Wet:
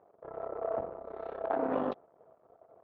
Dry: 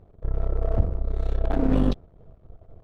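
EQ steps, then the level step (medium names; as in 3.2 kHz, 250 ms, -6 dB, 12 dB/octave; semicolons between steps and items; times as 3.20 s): high-pass 790 Hz 12 dB/octave; low-pass 1 kHz 12 dB/octave; +6.5 dB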